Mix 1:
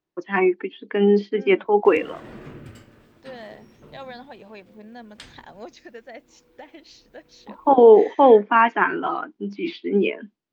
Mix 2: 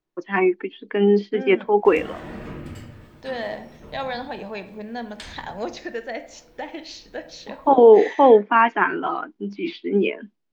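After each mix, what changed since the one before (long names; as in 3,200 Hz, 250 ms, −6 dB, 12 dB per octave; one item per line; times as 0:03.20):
second voice +9.0 dB
reverb: on, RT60 0.70 s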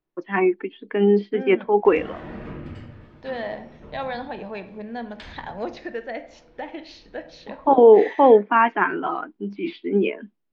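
master: add high-frequency loss of the air 190 metres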